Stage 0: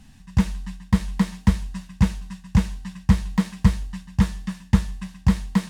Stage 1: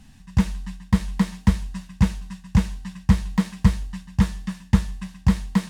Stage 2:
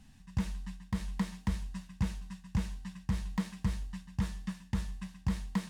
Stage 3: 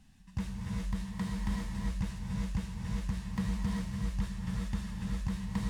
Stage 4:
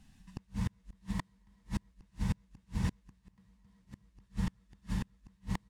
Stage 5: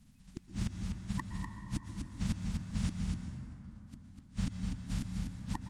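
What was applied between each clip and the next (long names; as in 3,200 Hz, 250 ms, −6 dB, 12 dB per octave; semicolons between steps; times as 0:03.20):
no processing that can be heard
brickwall limiter −13 dBFS, peak gain reduction 10 dB; level −8.5 dB
reverb whose tail is shaped and stops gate 430 ms rising, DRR −2.5 dB; level −3.5 dB
echo with shifted repeats 155 ms, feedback 53%, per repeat +66 Hz, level −22.5 dB; gate with flip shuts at −28 dBFS, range −32 dB; expander for the loud parts 1.5 to 1, over −50 dBFS; level +8 dB
spectral magnitudes quantised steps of 30 dB; single-tap delay 248 ms −5.5 dB; dense smooth reverb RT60 3.3 s, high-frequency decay 0.35×, pre-delay 105 ms, DRR 5 dB; level −1 dB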